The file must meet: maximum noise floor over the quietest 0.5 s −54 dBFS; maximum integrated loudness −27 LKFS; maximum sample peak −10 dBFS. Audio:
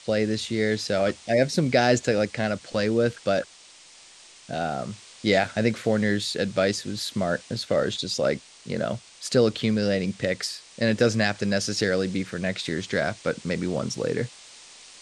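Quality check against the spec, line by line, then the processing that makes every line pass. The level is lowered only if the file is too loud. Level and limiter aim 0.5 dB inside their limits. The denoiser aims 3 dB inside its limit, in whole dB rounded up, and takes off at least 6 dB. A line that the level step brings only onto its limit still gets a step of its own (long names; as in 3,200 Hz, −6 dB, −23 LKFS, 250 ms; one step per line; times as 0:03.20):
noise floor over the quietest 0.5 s −50 dBFS: out of spec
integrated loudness −25.5 LKFS: out of spec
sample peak −5.5 dBFS: out of spec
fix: broadband denoise 6 dB, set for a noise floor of −50 dBFS
level −2 dB
brickwall limiter −10.5 dBFS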